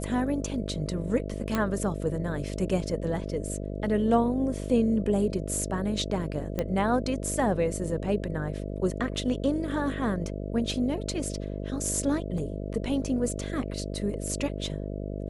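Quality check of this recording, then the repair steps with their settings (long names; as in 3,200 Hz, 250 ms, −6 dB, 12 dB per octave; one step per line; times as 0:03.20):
mains buzz 50 Hz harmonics 13 −34 dBFS
0:01.55: click −13 dBFS
0:06.59: click −15 dBFS
0:12.38: drop-out 2.4 ms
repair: click removal
hum removal 50 Hz, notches 13
repair the gap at 0:12.38, 2.4 ms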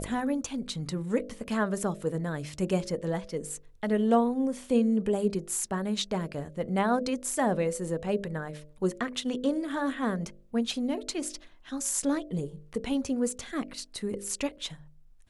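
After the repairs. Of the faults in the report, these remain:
none of them is left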